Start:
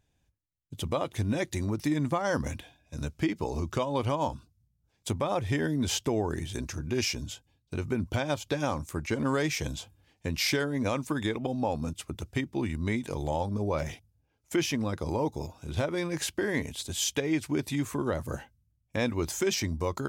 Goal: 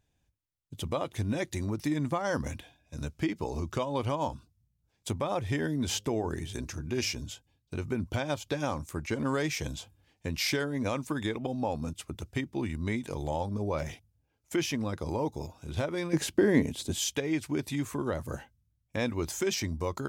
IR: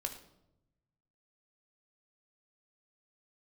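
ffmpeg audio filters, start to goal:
-filter_complex "[0:a]asettb=1/sr,asplit=3[s0][s1][s2];[s0]atrim=end=5.844[s3];[s1]atrim=start=5.84:end=7.25,asetpts=PTS-STARTPTS,afade=t=in:d=0.004:c=qsin,afade=t=out:st=1.406:d=0.004:c=qsin,bandreject=f=103.3:t=h:w=4,bandreject=f=206.6:t=h:w=4,bandreject=f=309.9:t=h:w=4,bandreject=f=413.2:t=h:w=4,bandreject=f=516.5:t=h:w=4[s4];[s2]atrim=start=7.246[s5];[s3][s4]acrossfade=d=0.004:c1=hsin:c2=qsin[s6];[s6][s5]acrossfade=d=0.004:c1=qsin:c2=hsin,asettb=1/sr,asplit=3[s7][s8][s9];[s7]atrim=end=16.134[s10];[s8]atrim=start=16.13:end=16.99,asetpts=PTS-STARTPTS,afade=t=in:d=0.004:c=qsin,afade=t=out:st=0.856:d=0.004:c=qsin,equalizer=f=250:w=0.51:g=10.5[s11];[s9]atrim=start=16.986[s12];[s10][s11]acrossfade=d=0.004:c1=hsin:c2=qsin[s13];[s13][s12]acrossfade=d=0.004:c1=qsin:c2=hsin,volume=0.794"

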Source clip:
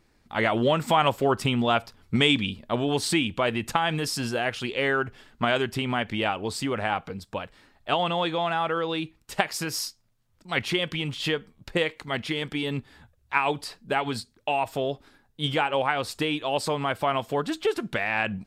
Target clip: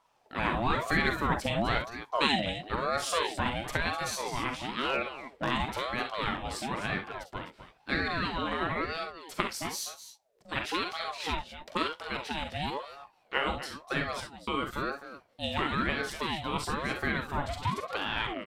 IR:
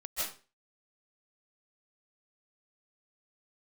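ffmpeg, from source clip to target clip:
-filter_complex "[0:a]aecho=1:1:42|53|66|252|270:0.398|0.282|0.266|0.237|0.119,asettb=1/sr,asplit=3[s0][s1][s2];[s0]atrim=end=4.854[s3];[s1]atrim=start=4.85:end=5.51,asetpts=PTS-STARTPTS,afade=t=in:d=0.004:c=qsin,afade=t=out:st=0.656:d=0.004:c=qsin,asoftclip=type=hard:threshold=0.168[s4];[s2]atrim=start=5.506[s5];[s3][s4]acrossfade=d=0.004:c1=hsin:c2=qsin[s6];[s6][s5]acrossfade=d=0.004:c1=qsin:c2=hsin,aeval=exprs='val(0)*sin(2*PI*680*n/s+680*0.45/1*sin(2*PI*1*n/s))':c=same,volume=0.631"

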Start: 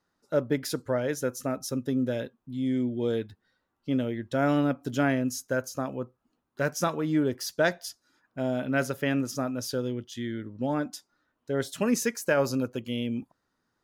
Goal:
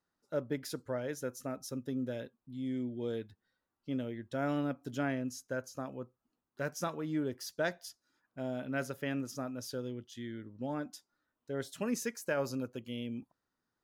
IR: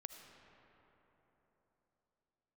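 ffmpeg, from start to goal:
-filter_complex "[0:a]asettb=1/sr,asplit=3[s0][s1][s2];[s0]atrim=end=4.984[s3];[s1]atrim=start=4.98:end=5.74,asetpts=PTS-STARTPTS,afade=t=in:d=0.004:c=qsin,afade=t=out:st=0.756:d=0.004:c=qsin,highshelf=f=12000:g=-9[s4];[s2]atrim=start=5.736[s5];[s3][s4]acrossfade=d=0.004:c1=hsin:c2=qsin[s6];[s6][s5]acrossfade=d=0.004:c1=qsin:c2=hsin,volume=0.355"

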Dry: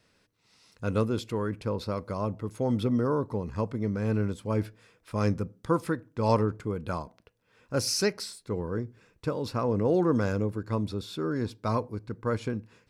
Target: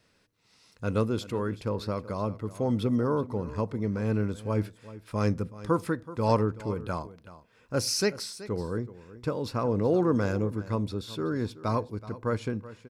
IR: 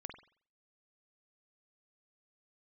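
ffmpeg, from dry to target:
-af "aecho=1:1:377:0.15"

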